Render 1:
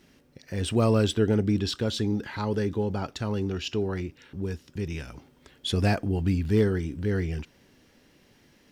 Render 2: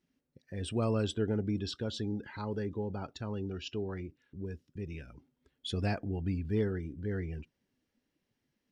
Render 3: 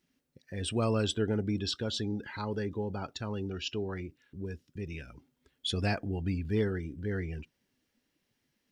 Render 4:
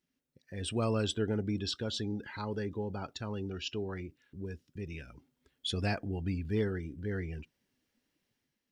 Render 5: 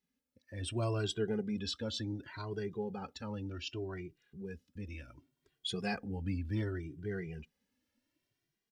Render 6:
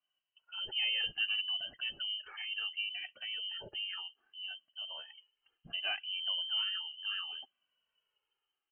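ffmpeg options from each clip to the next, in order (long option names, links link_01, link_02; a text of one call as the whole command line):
ffmpeg -i in.wav -af "afftdn=noise_reduction=15:noise_floor=-43,volume=-8.5dB" out.wav
ffmpeg -i in.wav -af "tiltshelf=frequency=1200:gain=-3,volume=4dB" out.wav
ffmpeg -i in.wav -af "dynaudnorm=framelen=100:gausssize=9:maxgain=6dB,volume=-8dB" out.wav
ffmpeg -i in.wav -filter_complex "[0:a]asplit=2[link_01][link_02];[link_02]adelay=2,afreqshift=0.67[link_03];[link_01][link_03]amix=inputs=2:normalize=1" out.wav
ffmpeg -i in.wav -af "lowpass=frequency=2700:width_type=q:width=0.5098,lowpass=frequency=2700:width_type=q:width=0.6013,lowpass=frequency=2700:width_type=q:width=0.9,lowpass=frequency=2700:width_type=q:width=2.563,afreqshift=-3200" out.wav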